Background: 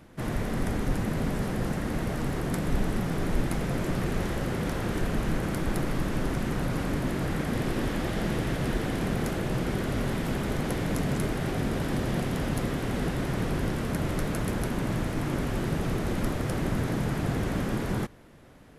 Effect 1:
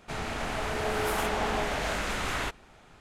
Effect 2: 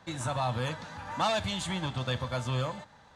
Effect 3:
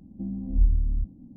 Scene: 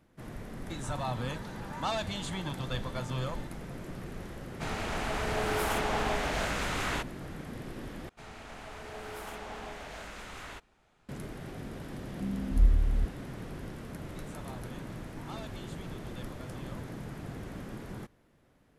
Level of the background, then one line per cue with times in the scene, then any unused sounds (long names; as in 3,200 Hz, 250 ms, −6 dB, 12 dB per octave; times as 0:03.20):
background −13 dB
0:00.63: mix in 2 −4.5 dB
0:04.52: mix in 1 −1.5 dB
0:08.09: overwrite with 1 −13 dB
0:12.01: mix in 3 −2 dB
0:14.08: mix in 2 −17.5 dB